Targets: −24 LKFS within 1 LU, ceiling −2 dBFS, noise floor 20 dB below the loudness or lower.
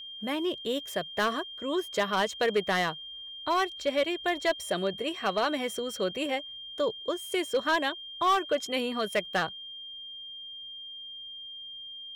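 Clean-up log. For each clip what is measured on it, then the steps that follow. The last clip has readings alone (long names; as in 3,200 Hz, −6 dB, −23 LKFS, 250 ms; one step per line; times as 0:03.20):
share of clipped samples 0.8%; peaks flattened at −19.5 dBFS; interfering tone 3,200 Hz; level of the tone −40 dBFS; integrated loudness −30.5 LKFS; sample peak −19.5 dBFS; target loudness −24.0 LKFS
→ clipped peaks rebuilt −19.5 dBFS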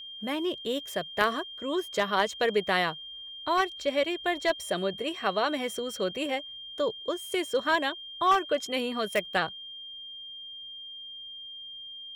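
share of clipped samples 0.0%; interfering tone 3,200 Hz; level of the tone −40 dBFS
→ notch filter 3,200 Hz, Q 30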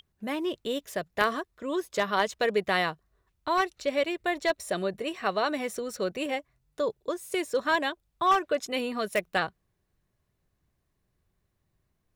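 interfering tone none found; integrated loudness −29.5 LKFS; sample peak −10.5 dBFS; target loudness −24.0 LKFS
→ level +5.5 dB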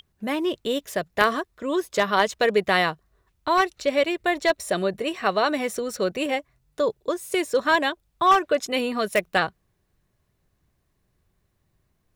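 integrated loudness −24.0 LKFS; sample peak −5.0 dBFS; background noise floor −71 dBFS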